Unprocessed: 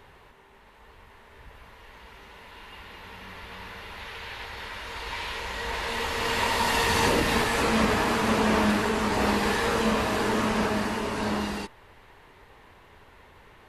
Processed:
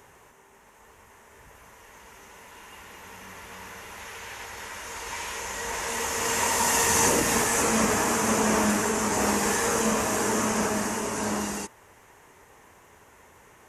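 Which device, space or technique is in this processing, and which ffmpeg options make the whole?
budget condenser microphone: -af "highpass=f=120:p=1,highshelf=f=5.2k:t=q:w=3:g=8"

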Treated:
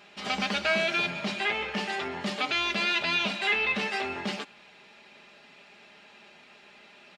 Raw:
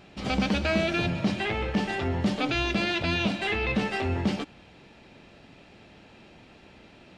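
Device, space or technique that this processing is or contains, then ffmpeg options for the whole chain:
filter by subtraction: -filter_complex "[0:a]lowshelf=f=380:g=3.5,aecho=1:1:4.9:0.58,asplit=2[a][b];[b]lowpass=1.6k,volume=-1[c];[a][c]amix=inputs=2:normalize=0"

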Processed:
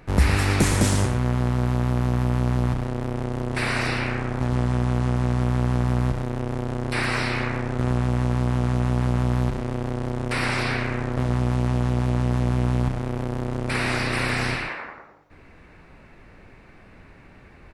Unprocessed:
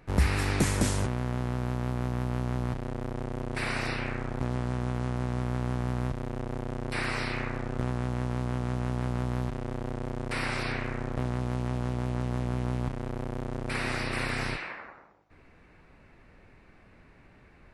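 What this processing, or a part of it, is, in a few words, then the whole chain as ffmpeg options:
parallel distortion: -filter_complex "[0:a]asplit=2[a][b];[b]asoftclip=type=hard:threshold=-30dB,volume=-9dB[c];[a][c]amix=inputs=2:normalize=0,aecho=1:1:113:0.376,volume=4.5dB"

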